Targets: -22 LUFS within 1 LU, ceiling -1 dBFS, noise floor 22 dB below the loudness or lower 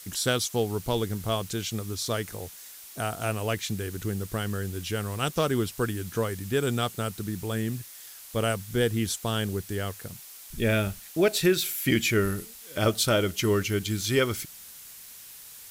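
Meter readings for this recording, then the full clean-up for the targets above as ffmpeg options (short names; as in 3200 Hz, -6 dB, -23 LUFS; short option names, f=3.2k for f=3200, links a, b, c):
noise floor -46 dBFS; noise floor target -50 dBFS; loudness -28.0 LUFS; peak -11.0 dBFS; loudness target -22.0 LUFS
-> -af "afftdn=nr=6:nf=-46"
-af "volume=6dB"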